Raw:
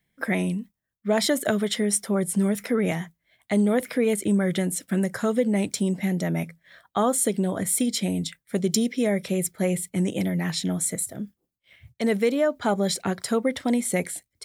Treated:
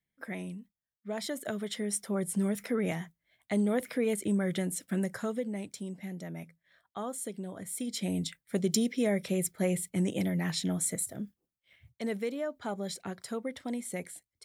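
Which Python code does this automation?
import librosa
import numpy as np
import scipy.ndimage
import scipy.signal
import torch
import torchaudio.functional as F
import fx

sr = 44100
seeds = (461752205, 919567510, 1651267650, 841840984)

y = fx.gain(x, sr, db=fx.line((1.2, -14.0), (2.28, -7.0), (5.08, -7.0), (5.66, -15.0), (7.7, -15.0), (8.15, -5.0), (11.2, -5.0), (12.38, -12.5)))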